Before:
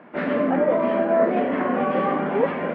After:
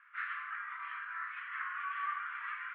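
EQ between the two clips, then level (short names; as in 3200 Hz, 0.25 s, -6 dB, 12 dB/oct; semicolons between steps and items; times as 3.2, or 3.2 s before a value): steep high-pass 1200 Hz 72 dB/oct; air absorption 340 m; high shelf 2300 Hz -9 dB; 0.0 dB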